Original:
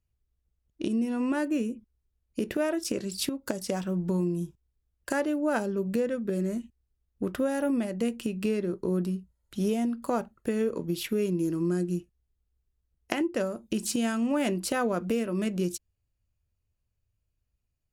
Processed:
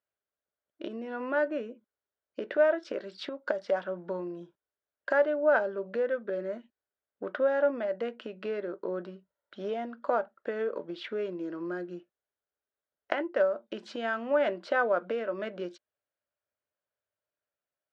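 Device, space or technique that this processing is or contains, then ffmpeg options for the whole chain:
phone earpiece: -af "highpass=500,equalizer=f=590:t=q:w=4:g=9,equalizer=f=1.5k:t=q:w=4:g=7,equalizer=f=2.6k:t=q:w=4:g=-8,lowpass=f=3.4k:w=0.5412,lowpass=f=3.4k:w=1.3066"

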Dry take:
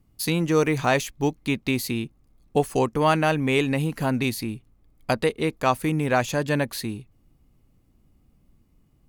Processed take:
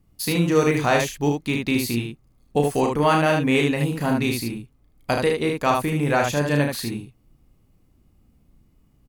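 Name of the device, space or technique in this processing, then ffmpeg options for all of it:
slapback doubling: -filter_complex "[0:a]asplit=3[a][b][c];[b]adelay=34,volume=-5dB[d];[c]adelay=76,volume=-4dB[e];[a][d][e]amix=inputs=3:normalize=0"

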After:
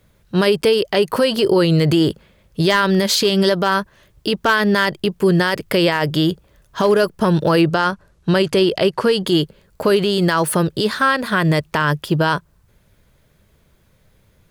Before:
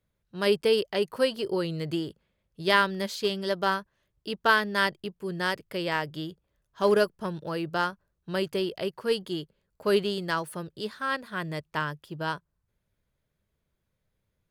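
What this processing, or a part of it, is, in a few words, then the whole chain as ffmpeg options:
loud club master: -filter_complex "[0:a]acompressor=threshold=-32dB:ratio=1.5,asoftclip=type=hard:threshold=-18.5dB,alimiter=level_in=28dB:limit=-1dB:release=50:level=0:latency=1,asettb=1/sr,asplit=3[a][b][c];[a]atrim=end=7.614[d];[b]atrim=start=7.61:end=9.27,asetpts=PTS-STARTPTS,afade=t=in:d=0.004:c=qsin,afade=t=out:st=1.656:d=0.004:c=qsin,lowpass=10k[e];[c]atrim=start=9.266[f];[d][e]acrossfade=d=0.004:c1=hsin:c2=qsin[g];[g][f]acrossfade=d=0.004:c1=qsin:c2=hsin,volume=-6dB"

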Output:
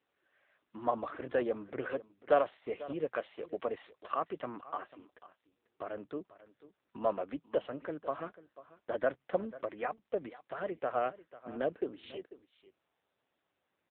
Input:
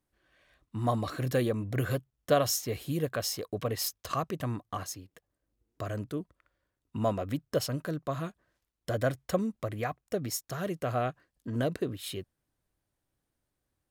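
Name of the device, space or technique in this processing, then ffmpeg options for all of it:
satellite phone: -af "highpass=130,highpass=370,lowpass=3.3k,aemphasis=mode=reproduction:type=cd,aecho=1:1:493:0.133" -ar 8000 -c:a libopencore_amrnb -b:a 6700

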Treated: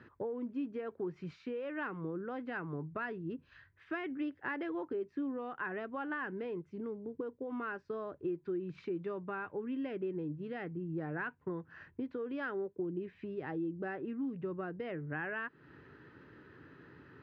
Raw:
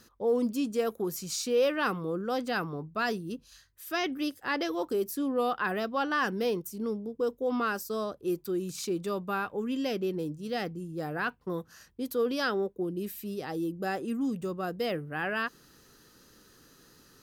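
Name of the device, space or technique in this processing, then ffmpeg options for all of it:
bass amplifier: -af "acompressor=threshold=-41dB:ratio=5,highpass=f=78:w=0.5412,highpass=f=78:w=1.3066,equalizer=f=210:t=q:w=4:g=-9,equalizer=f=510:t=q:w=4:g=-7,equalizer=f=730:t=q:w=4:g=-7,equalizer=f=1.2k:t=q:w=4:g=-7,lowpass=f=2.1k:w=0.5412,lowpass=f=2.1k:w=1.3066,volume=7.5dB"

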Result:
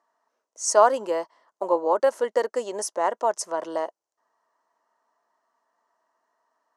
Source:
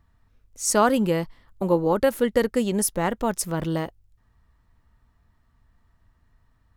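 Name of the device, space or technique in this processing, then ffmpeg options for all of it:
phone speaker on a table: -af "highpass=f=370:w=0.5412,highpass=f=370:w=1.3066,equalizer=f=640:t=q:w=4:g=9,equalizer=f=990:t=q:w=4:g=9,equalizer=f=2.4k:t=q:w=4:g=-8,equalizer=f=3.6k:t=q:w=4:g=-8,equalizer=f=6.1k:t=q:w=4:g=6,lowpass=f=8.9k:w=0.5412,lowpass=f=8.9k:w=1.3066,volume=-3dB"

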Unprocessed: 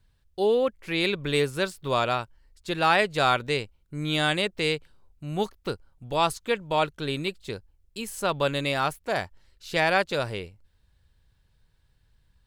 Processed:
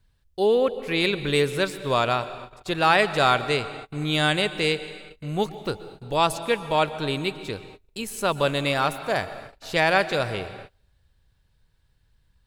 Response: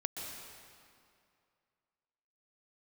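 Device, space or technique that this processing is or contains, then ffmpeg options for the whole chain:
keyed gated reverb: -filter_complex "[0:a]asplit=3[a][b][c];[1:a]atrim=start_sample=2205[d];[b][d]afir=irnorm=-1:irlink=0[e];[c]apad=whole_len=549599[f];[e][f]sidechaingate=range=-33dB:threshold=-54dB:ratio=16:detection=peak,volume=-8.5dB[g];[a][g]amix=inputs=2:normalize=0"

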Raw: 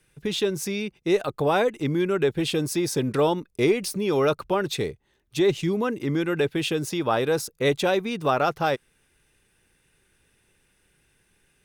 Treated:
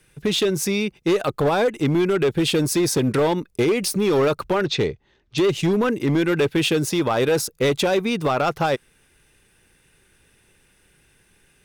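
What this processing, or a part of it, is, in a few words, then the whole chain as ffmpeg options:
limiter into clipper: -filter_complex "[0:a]asettb=1/sr,asplit=3[a][b][c];[a]atrim=end=4.644[d];[b]atrim=start=4.64:end=5.38,asetpts=PTS-STARTPTS,afade=t=in:d=0.004:c=qsin,afade=t=out:st=0.736:d=0.004:c=qsin,lowpass=f=5.7k:w=0.5412,lowpass=f=5.7k:w=1.3066[e];[c]atrim=start=5.376[f];[d][e]acrossfade=d=0.004:c1=hsin:c2=qsin[g];[g][f]acrossfade=d=0.004:c1=qsin:c2=hsin,alimiter=limit=-16dB:level=0:latency=1:release=87,asoftclip=type=hard:threshold=-21dB,volume=6.5dB"

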